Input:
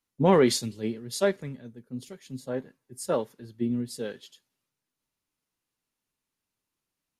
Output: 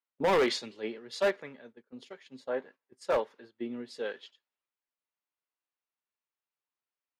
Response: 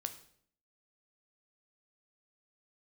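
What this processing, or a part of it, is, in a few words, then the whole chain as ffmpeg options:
walkie-talkie: -af "highpass=560,lowpass=2900,asoftclip=type=hard:threshold=0.0531,agate=range=0.282:threshold=0.00158:ratio=16:detection=peak,volume=1.58"

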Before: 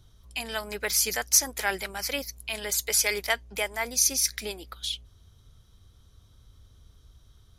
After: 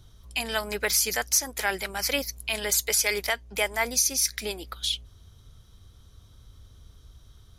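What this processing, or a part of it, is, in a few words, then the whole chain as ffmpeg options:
clipper into limiter: -af "asoftclip=type=hard:threshold=0.376,alimiter=limit=0.168:level=0:latency=1:release=378,volume=1.58"

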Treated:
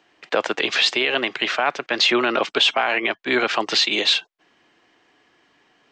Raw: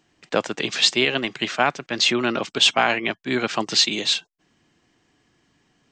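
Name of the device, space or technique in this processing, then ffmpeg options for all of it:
DJ mixer with the lows and highs turned down: -filter_complex "[0:a]acrossover=split=340 4300:gain=0.141 1 0.2[s0][s1][s2];[s0][s1][s2]amix=inputs=3:normalize=0,alimiter=limit=0.168:level=0:latency=1:release=60,volume=2.51"

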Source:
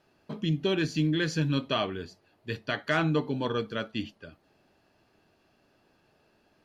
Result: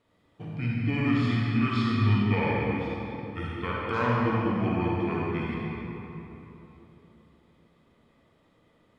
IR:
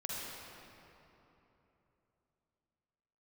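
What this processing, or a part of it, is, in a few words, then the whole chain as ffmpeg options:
slowed and reverbed: -filter_complex "[0:a]asetrate=32634,aresample=44100[s0];[1:a]atrim=start_sample=2205[s1];[s0][s1]afir=irnorm=-1:irlink=0"

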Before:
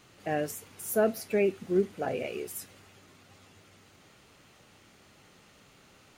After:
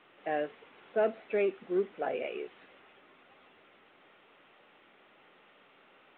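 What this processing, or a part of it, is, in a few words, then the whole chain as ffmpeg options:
telephone: -af "highpass=360,lowpass=3100,asoftclip=type=tanh:threshold=0.126" -ar 8000 -c:a pcm_mulaw

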